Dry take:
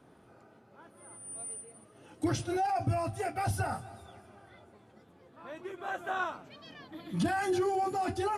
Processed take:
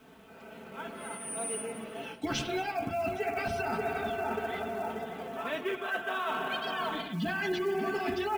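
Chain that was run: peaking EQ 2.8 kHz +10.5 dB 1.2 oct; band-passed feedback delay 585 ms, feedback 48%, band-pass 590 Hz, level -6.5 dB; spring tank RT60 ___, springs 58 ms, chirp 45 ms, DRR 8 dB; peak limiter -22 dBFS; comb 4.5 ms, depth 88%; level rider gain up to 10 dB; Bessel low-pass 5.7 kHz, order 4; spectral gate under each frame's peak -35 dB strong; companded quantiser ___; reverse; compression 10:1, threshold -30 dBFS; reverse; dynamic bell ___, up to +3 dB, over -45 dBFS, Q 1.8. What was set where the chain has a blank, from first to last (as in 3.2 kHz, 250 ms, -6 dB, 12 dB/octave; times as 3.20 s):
3.3 s, 6-bit, 350 Hz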